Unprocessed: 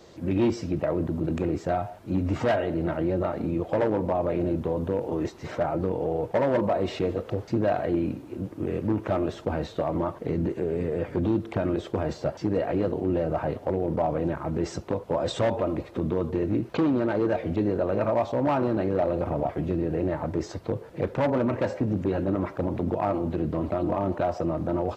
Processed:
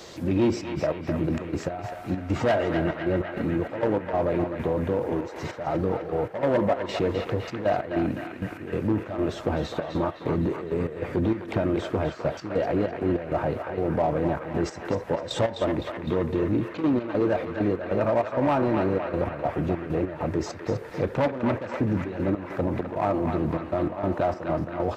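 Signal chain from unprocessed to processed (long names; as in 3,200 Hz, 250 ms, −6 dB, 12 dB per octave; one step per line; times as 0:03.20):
gate pattern "xxxx.x.xx.x.xx." 98 BPM −12 dB
in parallel at −6 dB: soft clipping −31 dBFS, distortion −6 dB
on the sum: feedback echo with a band-pass in the loop 255 ms, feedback 76%, band-pass 1,800 Hz, level −3.5 dB
one half of a high-frequency compander encoder only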